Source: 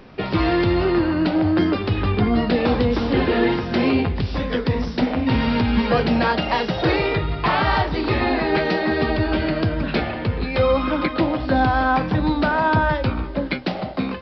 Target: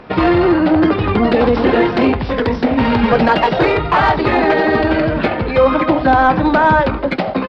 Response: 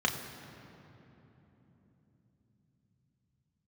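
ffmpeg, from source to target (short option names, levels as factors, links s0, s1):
-filter_complex "[0:a]asplit=2[s0][s1];[s1]highpass=f=720:p=1,volume=3.98,asoftclip=type=tanh:threshold=0.501[s2];[s0][s2]amix=inputs=2:normalize=0,lowpass=f=1100:p=1,volume=0.501,atempo=1.9,volume=2.24"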